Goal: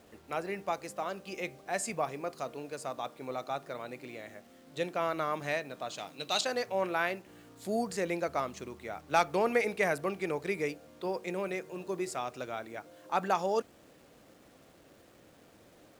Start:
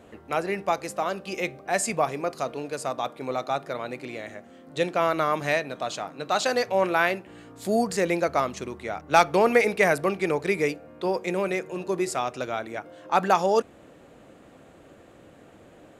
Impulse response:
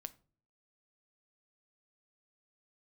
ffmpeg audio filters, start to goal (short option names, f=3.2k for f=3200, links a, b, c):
-filter_complex "[0:a]asettb=1/sr,asplit=3[a][b][c];[a]atrim=end=5.984[d];[b]atrim=start=5.98:end=6.41,asetpts=PTS-STARTPTS,afade=t=in:d=0.004:c=qsin,afade=t=out:st=0.426:d=0.004:c=qsin,highshelf=f=2.2k:t=q:w=1.5:g=9.5[e];[c]atrim=start=6.406[f];[d][e]acrossfade=d=0.004:c1=hsin:c2=qsin[g];[g][f]acrossfade=d=0.004:c1=qsin:c2=hsin,acrusher=bits=8:mix=0:aa=0.000001,volume=-8.5dB"